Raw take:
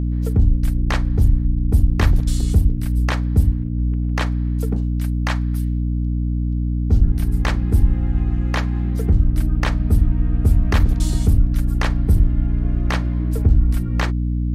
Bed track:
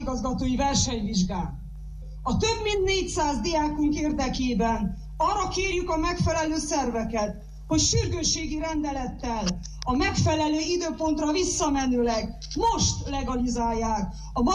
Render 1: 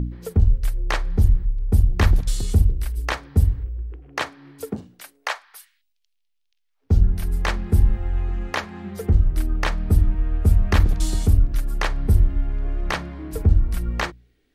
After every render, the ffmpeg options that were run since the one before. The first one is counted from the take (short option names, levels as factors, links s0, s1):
-af "bandreject=f=60:t=h:w=4,bandreject=f=120:t=h:w=4,bandreject=f=180:t=h:w=4,bandreject=f=240:t=h:w=4,bandreject=f=300:t=h:w=4"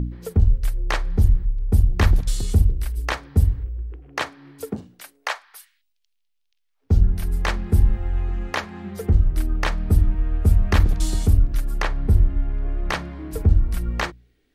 -filter_complex "[0:a]asettb=1/sr,asplit=3[s0][s1][s2];[s0]atrim=end=11.824[s3];[s1]atrim=start=11.82:end=12.9,asetpts=PTS-STARTPTS,afade=t=in:d=0.004:c=qsin,afade=t=out:st=1.076:d=0.004:c=qsin,highshelf=f=4400:g=-8.5[s4];[s2]atrim=start=12.896[s5];[s3][s4]acrossfade=d=0.004:c1=hsin:c2=qsin[s6];[s6][s5]acrossfade=d=0.004:c1=qsin:c2=hsin"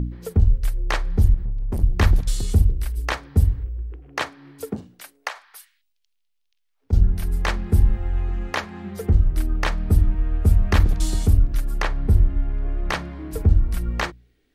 -filter_complex "[0:a]asettb=1/sr,asplit=3[s0][s1][s2];[s0]atrim=end=1.344[s3];[s1]atrim=start=1.34:end=1.83,asetpts=PTS-STARTPTS,afade=t=in:d=0.004:c=qsin,afade=t=out:st=0.486:d=0.004:c=qsin,asoftclip=type=hard:threshold=0.0841[s4];[s2]atrim=start=1.826[s5];[s3][s4]acrossfade=d=0.004:c1=hsin:c2=qsin[s6];[s6][s5]acrossfade=d=0.004:c1=qsin:c2=hsin,asettb=1/sr,asplit=3[s7][s8][s9];[s7]atrim=end=5.284[s10];[s8]atrim=start=5.28:end=6.93,asetpts=PTS-STARTPTS,afade=t=in:d=0.004:c=qsin,afade=t=out:st=1.646:d=0.004:c=qsin,acompressor=threshold=0.0355:ratio=6:attack=3.2:release=140:knee=1:detection=peak[s11];[s9]atrim=start=6.926[s12];[s10][s11]acrossfade=d=0.004:c1=hsin:c2=qsin[s13];[s13][s12]acrossfade=d=0.004:c1=qsin:c2=hsin"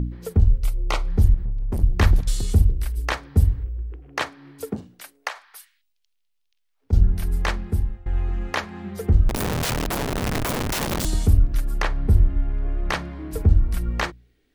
-filter_complex "[0:a]asettb=1/sr,asplit=3[s0][s1][s2];[s0]atrim=end=0.634[s3];[s1]atrim=start=0.63:end=1.08,asetpts=PTS-STARTPTS,afade=t=in:d=0.004:c=qsin,afade=t=out:st=0.446:d=0.004:c=qsin,asuperstop=centerf=1700:order=4:qfactor=3.6[s4];[s2]atrim=start=1.076[s5];[s3][s4]acrossfade=d=0.004:c1=hsin:c2=qsin[s6];[s6][s5]acrossfade=d=0.004:c1=qsin:c2=hsin,asettb=1/sr,asplit=3[s7][s8][s9];[s7]atrim=end=9.294[s10];[s8]atrim=start=9.29:end=11.05,asetpts=PTS-STARTPTS,afade=t=in:d=0.004:c=qsin,afade=t=out:st=1.756:d=0.004:c=qsin,aeval=exprs='(mod(10*val(0)+1,2)-1)/10':c=same[s11];[s9]atrim=start=11.046[s12];[s10][s11]acrossfade=d=0.004:c1=hsin:c2=qsin[s13];[s13][s12]acrossfade=d=0.004:c1=qsin:c2=hsin,asplit=2[s14][s15];[s14]atrim=end=8.06,asetpts=PTS-STARTPTS,afade=t=out:st=7.42:d=0.64:silence=0.0891251[s16];[s15]atrim=start=8.06,asetpts=PTS-STARTPTS,afade=t=in:d=0.004:c=hsin:silence=0.0891251[s17];[s16][s17]concat=n=2:v=0:a=1"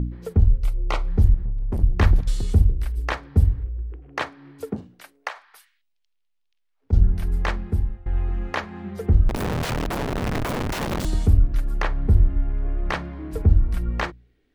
-af "highshelf=f=4500:g=-11"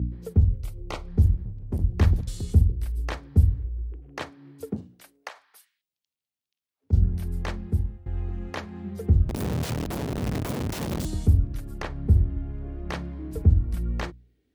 -af "highpass=f=54:w=0.5412,highpass=f=54:w=1.3066,equalizer=f=1400:w=0.39:g=-9.5"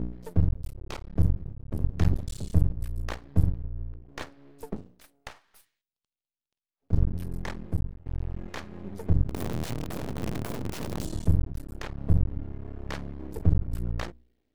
-af "aeval=exprs='max(val(0),0)':c=same"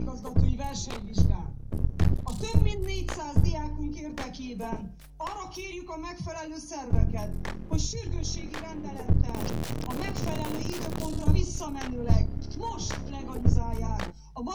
-filter_complex "[1:a]volume=0.251[s0];[0:a][s0]amix=inputs=2:normalize=0"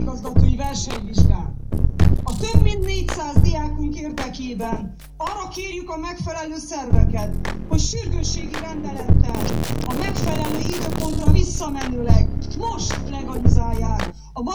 -af "volume=2.82,alimiter=limit=0.891:level=0:latency=1"